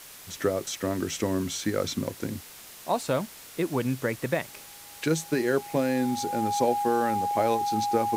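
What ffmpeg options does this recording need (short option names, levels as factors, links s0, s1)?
-af "bandreject=f=820:w=30,afwtdn=0.0056"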